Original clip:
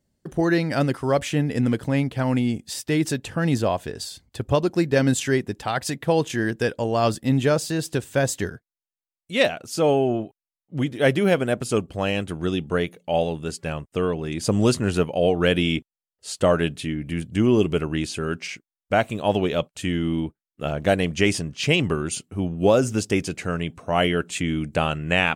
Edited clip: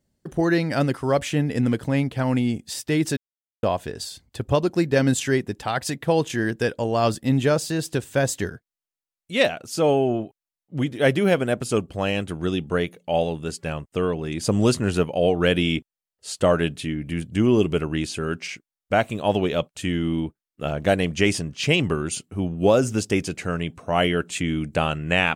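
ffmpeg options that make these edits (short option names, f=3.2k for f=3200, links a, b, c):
-filter_complex "[0:a]asplit=3[a][b][c];[a]atrim=end=3.17,asetpts=PTS-STARTPTS,afade=t=out:st=3.166:d=0.004:c=hsin[d];[b]atrim=start=3.17:end=3.63,asetpts=PTS-STARTPTS,volume=0[e];[c]atrim=start=3.63,asetpts=PTS-STARTPTS,afade=t=in:d=0.004:c=hsin[f];[d][e][f]concat=n=3:v=0:a=1"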